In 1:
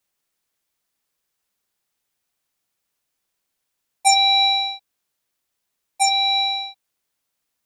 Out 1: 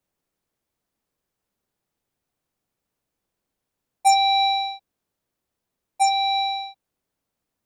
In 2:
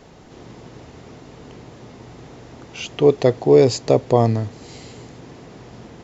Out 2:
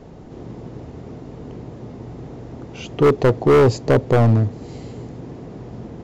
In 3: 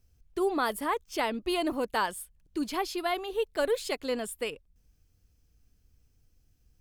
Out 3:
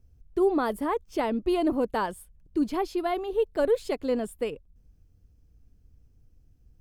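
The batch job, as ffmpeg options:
-af "tiltshelf=f=970:g=7.5,volume=9.5dB,asoftclip=hard,volume=-9.5dB"

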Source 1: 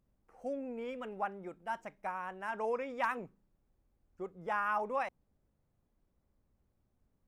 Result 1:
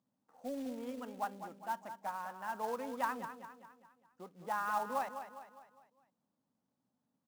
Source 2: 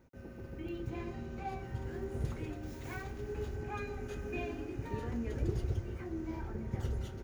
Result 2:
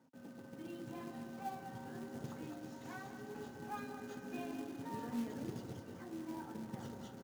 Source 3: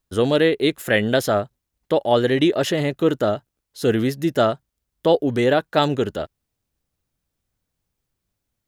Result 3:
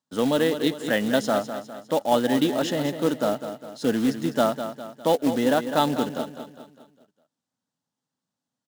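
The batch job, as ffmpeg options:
-af "highpass=f=150:w=0.5412,highpass=f=150:w=1.3066,equalizer=f=260:t=q:w=4:g=7,equalizer=f=380:t=q:w=4:g=-9,equalizer=f=890:t=q:w=4:g=5,equalizer=f=2.3k:t=q:w=4:g=-10,lowpass=f=8.4k:w=0.5412,lowpass=f=8.4k:w=1.3066,aecho=1:1:203|406|609|812|1015:0.316|0.149|0.0699|0.0328|0.0154,acrusher=bits=4:mode=log:mix=0:aa=0.000001,volume=-4dB"

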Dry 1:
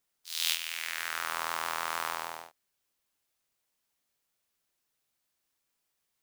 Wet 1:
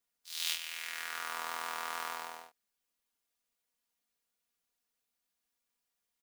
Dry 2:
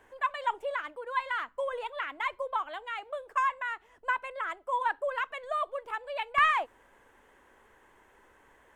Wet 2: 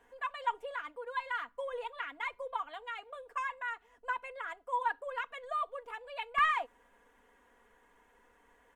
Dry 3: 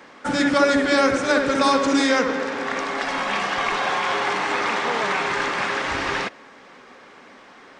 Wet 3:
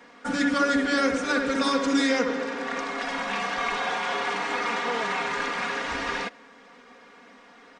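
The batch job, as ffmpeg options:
-af "aecho=1:1:4.2:0.68,volume=-6.5dB"

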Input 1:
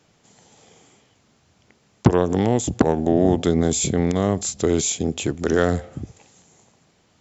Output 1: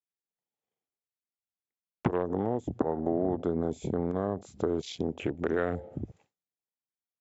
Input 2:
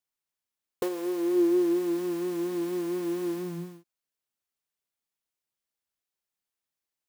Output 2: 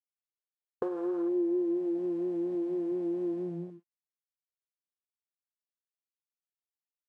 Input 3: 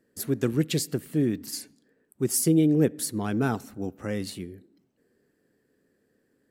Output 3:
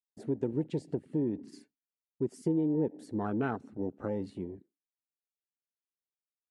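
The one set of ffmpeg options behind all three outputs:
-af "bass=f=250:g=-6,treble=f=4k:g=-11,acompressor=threshold=-32dB:ratio=2.5,afwtdn=0.00891,agate=range=-33dB:threshold=-55dB:ratio=3:detection=peak,aresample=22050,aresample=44100,volume=2dB"

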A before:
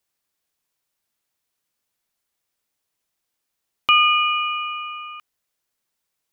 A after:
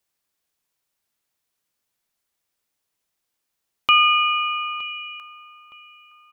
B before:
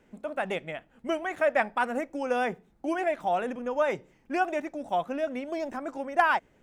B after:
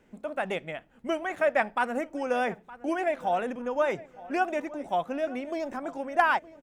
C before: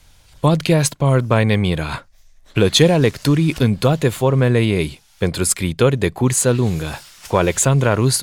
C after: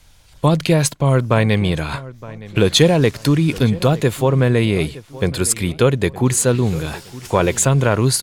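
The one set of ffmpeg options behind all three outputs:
-filter_complex "[0:a]asplit=2[a][b];[b]adelay=916,lowpass=f=2.7k:p=1,volume=-18.5dB,asplit=2[c][d];[d]adelay=916,lowpass=f=2.7k:p=1,volume=0.38,asplit=2[e][f];[f]adelay=916,lowpass=f=2.7k:p=1,volume=0.38[g];[a][c][e][g]amix=inputs=4:normalize=0"

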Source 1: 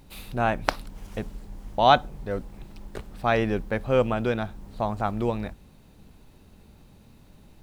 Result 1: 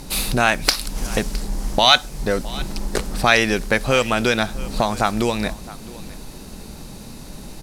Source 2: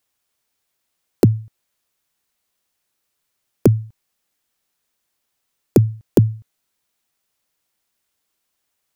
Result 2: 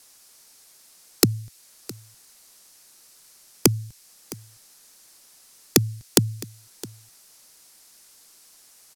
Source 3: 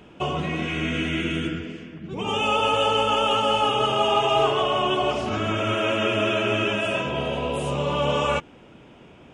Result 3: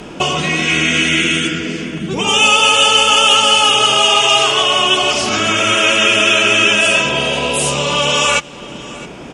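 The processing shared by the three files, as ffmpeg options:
-filter_complex "[0:a]lowpass=9.7k,equalizer=f=88:t=o:w=0.63:g=-10.5,acrossover=split=1700[a][b];[a]acompressor=threshold=-35dB:ratio=6[c];[c][b]amix=inputs=2:normalize=0,aexciter=amount=3:drive=4.6:freq=4.4k,apsyclip=19dB,asplit=2[d][e];[e]aecho=0:1:663:0.106[f];[d][f]amix=inputs=2:normalize=0,volume=-2dB"

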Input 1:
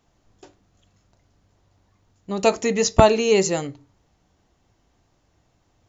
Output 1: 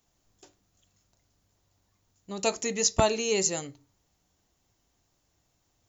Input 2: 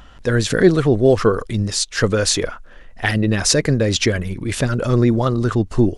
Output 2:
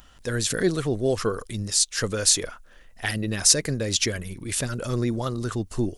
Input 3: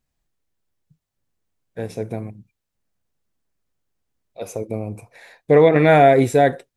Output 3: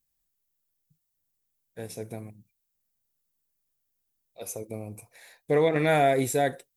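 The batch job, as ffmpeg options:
-af "aemphasis=mode=production:type=75fm,volume=-9.5dB"

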